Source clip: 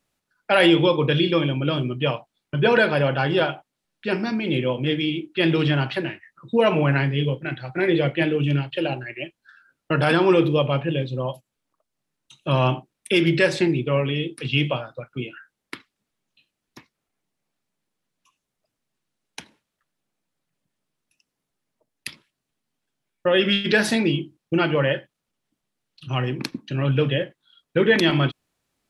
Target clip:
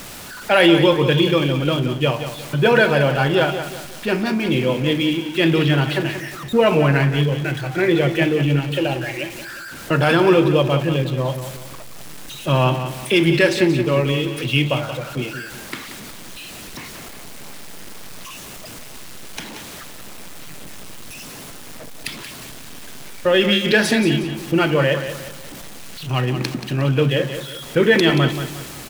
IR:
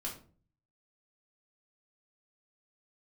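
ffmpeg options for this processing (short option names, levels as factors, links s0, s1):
-af "aeval=exprs='val(0)+0.5*0.0251*sgn(val(0))':c=same,aecho=1:1:180|360|540|720:0.316|0.12|0.0457|0.0174,volume=1.33"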